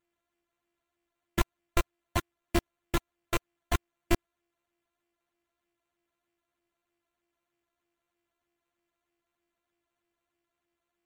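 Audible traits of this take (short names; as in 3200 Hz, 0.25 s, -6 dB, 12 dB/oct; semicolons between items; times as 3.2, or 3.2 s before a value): a buzz of ramps at a fixed pitch in blocks of 128 samples; phasing stages 8, 3.2 Hz, lowest notch 230–1600 Hz; aliases and images of a low sample rate 5100 Hz, jitter 0%; MP3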